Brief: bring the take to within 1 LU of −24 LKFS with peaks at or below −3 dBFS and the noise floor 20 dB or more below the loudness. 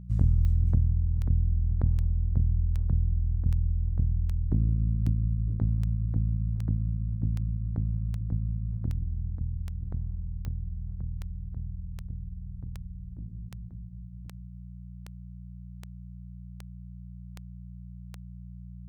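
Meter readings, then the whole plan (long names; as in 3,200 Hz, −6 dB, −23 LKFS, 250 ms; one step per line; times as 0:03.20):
number of clicks 24; mains hum 60 Hz; hum harmonics up to 180 Hz; level of the hum −40 dBFS; integrated loudness −30.0 LKFS; sample peak −12.5 dBFS; target loudness −24.0 LKFS
→ click removal
hum removal 60 Hz, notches 3
level +6 dB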